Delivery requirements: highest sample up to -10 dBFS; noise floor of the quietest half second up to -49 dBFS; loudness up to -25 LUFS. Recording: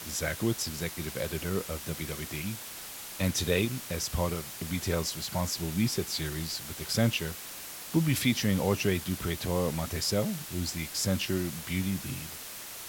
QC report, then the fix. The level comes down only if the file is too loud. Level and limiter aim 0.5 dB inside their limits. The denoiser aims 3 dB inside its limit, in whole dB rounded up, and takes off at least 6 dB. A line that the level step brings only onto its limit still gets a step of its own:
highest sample -12.0 dBFS: pass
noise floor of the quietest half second -42 dBFS: fail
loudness -31.0 LUFS: pass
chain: noise reduction 10 dB, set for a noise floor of -42 dBFS

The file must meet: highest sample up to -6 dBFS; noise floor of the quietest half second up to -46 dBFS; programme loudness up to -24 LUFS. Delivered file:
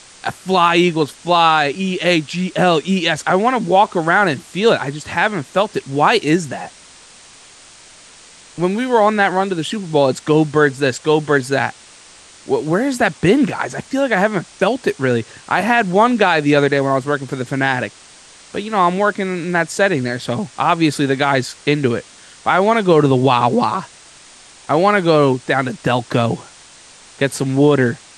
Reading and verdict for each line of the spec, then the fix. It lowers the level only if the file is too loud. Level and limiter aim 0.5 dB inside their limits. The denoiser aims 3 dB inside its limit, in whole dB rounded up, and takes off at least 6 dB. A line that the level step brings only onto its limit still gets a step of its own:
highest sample -1.5 dBFS: fail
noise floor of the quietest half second -43 dBFS: fail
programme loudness -16.5 LUFS: fail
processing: trim -8 dB

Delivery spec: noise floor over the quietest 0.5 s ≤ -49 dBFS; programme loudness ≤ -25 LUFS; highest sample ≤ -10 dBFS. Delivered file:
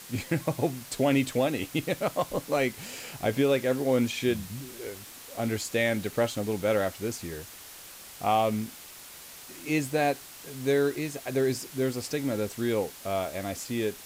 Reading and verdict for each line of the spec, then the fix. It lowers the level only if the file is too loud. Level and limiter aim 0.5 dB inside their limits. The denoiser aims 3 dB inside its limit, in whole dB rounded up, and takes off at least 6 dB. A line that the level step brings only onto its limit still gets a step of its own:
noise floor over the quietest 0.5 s -46 dBFS: fail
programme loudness -29.0 LUFS: pass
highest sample -14.0 dBFS: pass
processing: noise reduction 6 dB, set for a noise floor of -46 dBFS

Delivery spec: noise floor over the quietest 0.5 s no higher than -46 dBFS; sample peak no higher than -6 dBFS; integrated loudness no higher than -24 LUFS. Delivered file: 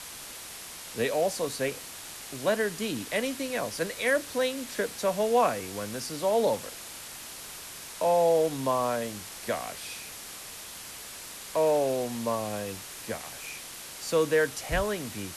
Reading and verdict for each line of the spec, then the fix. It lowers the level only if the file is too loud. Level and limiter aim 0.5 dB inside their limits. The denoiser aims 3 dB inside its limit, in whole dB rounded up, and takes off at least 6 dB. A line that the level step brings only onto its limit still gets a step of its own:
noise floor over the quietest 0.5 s -43 dBFS: fail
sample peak -13.0 dBFS: pass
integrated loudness -30.0 LUFS: pass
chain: noise reduction 6 dB, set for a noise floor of -43 dBFS

